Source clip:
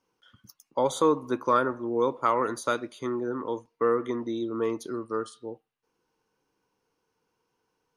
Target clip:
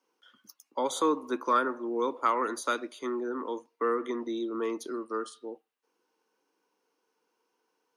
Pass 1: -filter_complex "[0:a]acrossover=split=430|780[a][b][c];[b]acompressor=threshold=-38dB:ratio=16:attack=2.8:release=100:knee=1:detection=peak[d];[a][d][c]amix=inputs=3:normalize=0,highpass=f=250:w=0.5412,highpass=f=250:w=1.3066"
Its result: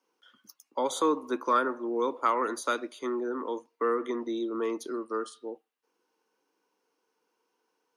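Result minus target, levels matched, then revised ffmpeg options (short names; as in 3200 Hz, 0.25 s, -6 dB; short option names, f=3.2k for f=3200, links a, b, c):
compressor: peak gain reduction -6 dB
-filter_complex "[0:a]acrossover=split=430|780[a][b][c];[b]acompressor=threshold=-44.5dB:ratio=16:attack=2.8:release=100:knee=1:detection=peak[d];[a][d][c]amix=inputs=3:normalize=0,highpass=f=250:w=0.5412,highpass=f=250:w=1.3066"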